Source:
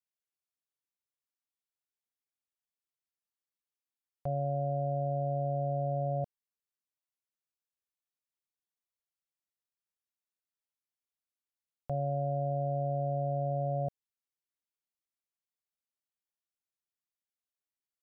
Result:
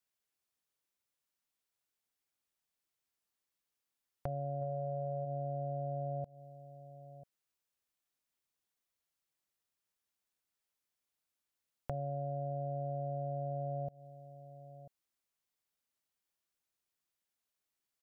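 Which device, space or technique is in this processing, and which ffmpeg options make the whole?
serial compression, peaks first: -filter_complex "[0:a]asplit=3[link_01][link_02][link_03];[link_01]afade=type=out:start_time=4.61:duration=0.02[link_04];[link_02]equalizer=frequency=125:width_type=o:width=1:gain=6,equalizer=frequency=250:width_type=o:width=1:gain=-9,equalizer=frequency=500:width_type=o:width=1:gain=9,afade=type=in:start_time=4.61:duration=0.02,afade=type=out:start_time=5.24:duration=0.02[link_05];[link_03]afade=type=in:start_time=5.24:duration=0.02[link_06];[link_04][link_05][link_06]amix=inputs=3:normalize=0,asplit=2[link_07][link_08];[link_08]adelay=991.3,volume=-26dB,highshelf=frequency=4000:gain=-22.3[link_09];[link_07][link_09]amix=inputs=2:normalize=0,acompressor=threshold=-37dB:ratio=6,acompressor=threshold=-44dB:ratio=2,volume=5.5dB"

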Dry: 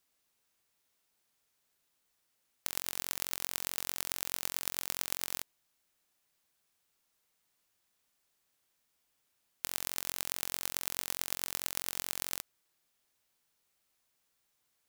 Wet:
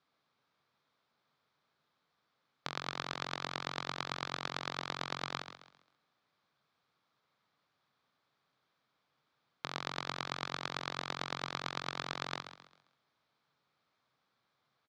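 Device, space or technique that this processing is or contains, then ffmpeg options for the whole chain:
frequency-shifting delay pedal into a guitar cabinet: -filter_complex "[0:a]asplit=5[link_01][link_02][link_03][link_04][link_05];[link_02]adelay=133,afreqshift=35,volume=-10.5dB[link_06];[link_03]adelay=266,afreqshift=70,volume=-19.6dB[link_07];[link_04]adelay=399,afreqshift=105,volume=-28.7dB[link_08];[link_05]adelay=532,afreqshift=140,volume=-37.9dB[link_09];[link_01][link_06][link_07][link_08][link_09]amix=inputs=5:normalize=0,highpass=110,equalizer=frequency=140:width_type=q:width=4:gain=7,equalizer=frequency=360:width_type=q:width=4:gain=-3,equalizer=frequency=1200:width_type=q:width=4:gain=5,equalizer=frequency=1900:width_type=q:width=4:gain=-4,equalizer=frequency=2800:width_type=q:width=4:gain=-9,lowpass=frequency=3900:width=0.5412,lowpass=frequency=3900:width=1.3066,volume=5.5dB"

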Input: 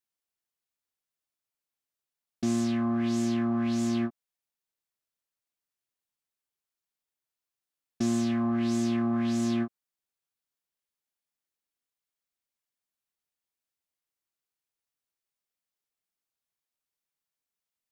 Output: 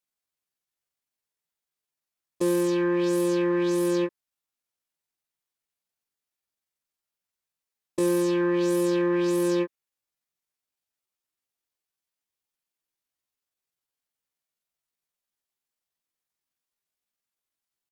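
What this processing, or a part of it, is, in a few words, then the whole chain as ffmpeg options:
chipmunk voice: -af "asetrate=66075,aresample=44100,atempo=0.66742,volume=3.5dB"

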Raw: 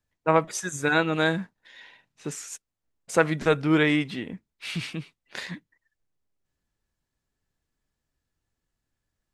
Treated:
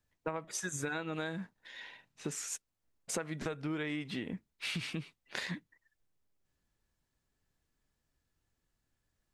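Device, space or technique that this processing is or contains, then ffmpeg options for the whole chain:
serial compression, leveller first: -af "acompressor=threshold=-26dB:ratio=2,acompressor=threshold=-34dB:ratio=8"

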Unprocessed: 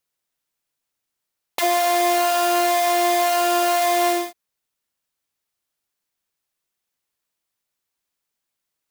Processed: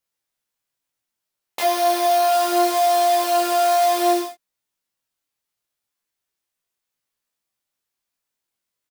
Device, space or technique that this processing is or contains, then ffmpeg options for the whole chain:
double-tracked vocal: -filter_complex "[0:a]asplit=2[link_01][link_02];[link_02]adelay=26,volume=-3dB[link_03];[link_01][link_03]amix=inputs=2:normalize=0,flanger=delay=15.5:depth=3.3:speed=0.67,asettb=1/sr,asplit=3[link_04][link_05][link_06];[link_04]atrim=end=1.634[link_07];[link_05]atrim=start=1.63:end=2.33,asetpts=PTS-STARTPTS,afade=type=in:duration=0.004:curve=qsin,afade=type=out:start_time=0.696:duration=0.004:curve=qsin,bandreject=frequency=7600:width=6.6[link_08];[link_06]atrim=start=2.326[link_09];[link_07][link_08]acrossfade=duration=0.004:curve1=hsin:curve2=qsin[link_10];[link_10][link_09]acrossfade=duration=0.004:curve1=qsin:curve2=hsin"

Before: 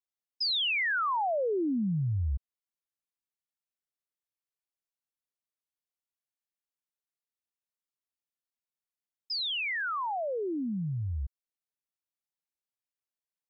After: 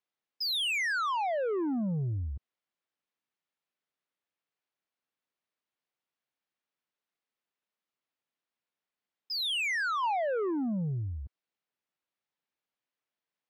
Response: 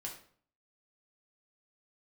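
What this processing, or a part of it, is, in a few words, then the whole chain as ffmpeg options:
AM radio: -filter_complex "[0:a]highpass=150,lowpass=3400,acompressor=threshold=-32dB:ratio=5,asoftclip=type=tanh:threshold=-35.5dB,asettb=1/sr,asplit=3[link_01][link_02][link_03];[link_01]atrim=end=10.034[link_04];[link_02]atrim=start=10.03:end=10.51,asetpts=PTS-STARTPTS,afade=type=in:duration=0.004:curve=qsin,afade=type=out:start_time=0.476:duration=0.004:curve=qsin,equalizer=frequency=1400:width=1.5:gain=5.5[link_05];[link_03]atrim=start=10.506[link_06];[link_04][link_05]acrossfade=duration=0.004:curve1=hsin:curve2=qsin[link_07];[link_07][link_06]acrossfade=duration=0.004:curve1=qsin:curve2=hsin,volume=7.5dB"

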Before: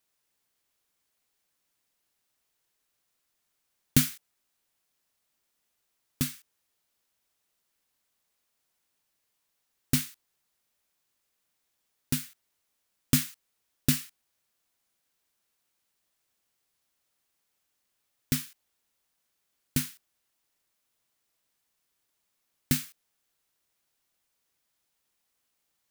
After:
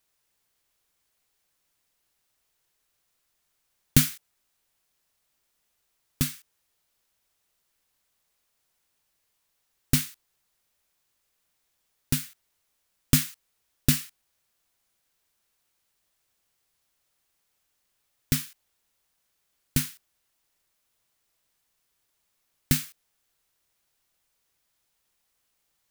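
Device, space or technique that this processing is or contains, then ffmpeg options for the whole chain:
low shelf boost with a cut just above: -af "lowshelf=frequency=78:gain=6.5,equalizer=frequency=250:width_type=o:width=0.77:gain=-3,volume=3dB"

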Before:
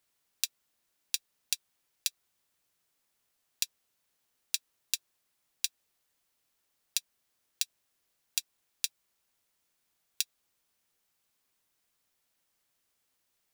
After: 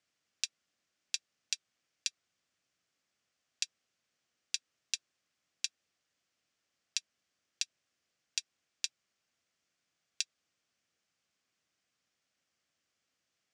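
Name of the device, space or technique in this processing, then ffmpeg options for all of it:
car door speaker: -af "highpass=86,equalizer=frequency=410:width_type=q:width=4:gain=-4,equalizer=frequency=920:width_type=q:width=4:gain=-9,equalizer=frequency=3900:width_type=q:width=4:gain=-4,lowpass=frequency=6800:width=0.5412,lowpass=frequency=6800:width=1.3066"

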